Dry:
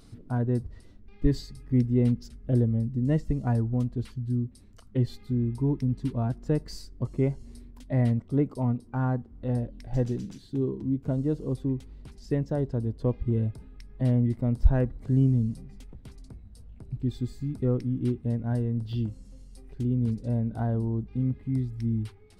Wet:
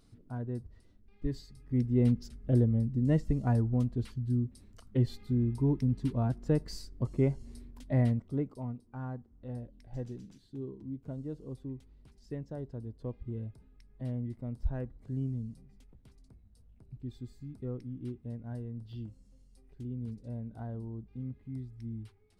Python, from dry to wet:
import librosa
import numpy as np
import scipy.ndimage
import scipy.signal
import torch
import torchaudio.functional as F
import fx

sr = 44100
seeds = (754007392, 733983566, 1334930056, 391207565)

y = fx.gain(x, sr, db=fx.line((1.46, -10.5), (2.07, -2.0), (7.96, -2.0), (8.72, -12.5)))